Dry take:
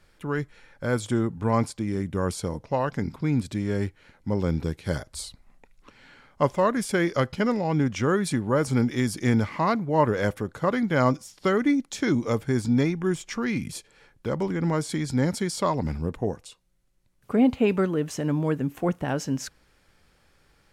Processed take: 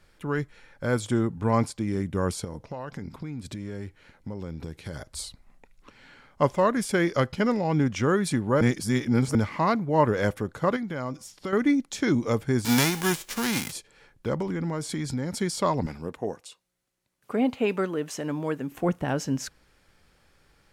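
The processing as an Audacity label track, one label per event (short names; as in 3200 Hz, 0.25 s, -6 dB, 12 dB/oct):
2.440000	5.130000	compressor 12:1, threshold -31 dBFS
8.610000	9.350000	reverse
10.760000	11.530000	compressor 3:1, threshold -31 dBFS
12.640000	13.710000	spectral whitening exponent 0.3
14.410000	15.360000	compressor, threshold -25 dBFS
15.860000	18.720000	HPF 380 Hz 6 dB/oct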